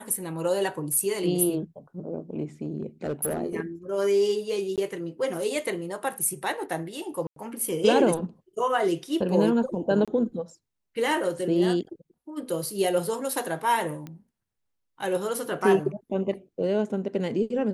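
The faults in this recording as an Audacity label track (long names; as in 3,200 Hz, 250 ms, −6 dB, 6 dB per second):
2.640000	3.420000	clipping −23.5 dBFS
4.760000	4.780000	drop-out 17 ms
7.270000	7.360000	drop-out 93 ms
10.050000	10.080000	drop-out 26 ms
14.070000	14.070000	click −25 dBFS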